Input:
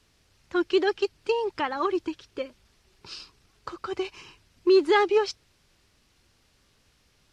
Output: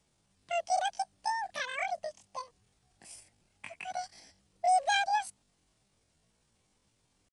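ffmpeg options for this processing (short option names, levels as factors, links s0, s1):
-af "aresample=11025,aresample=44100,asetrate=85689,aresample=44100,atempo=0.514651,volume=0.422"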